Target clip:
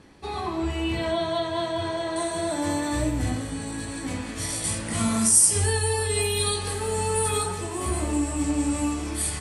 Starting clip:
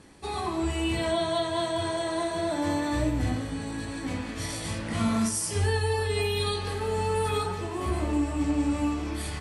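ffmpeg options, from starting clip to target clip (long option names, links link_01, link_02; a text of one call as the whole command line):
ffmpeg -i in.wav -af "asetnsamples=nb_out_samples=441:pad=0,asendcmd='2.16 equalizer g 9;4.64 equalizer g 15',equalizer=frequency=9000:width=1.1:gain=-8,volume=1dB" out.wav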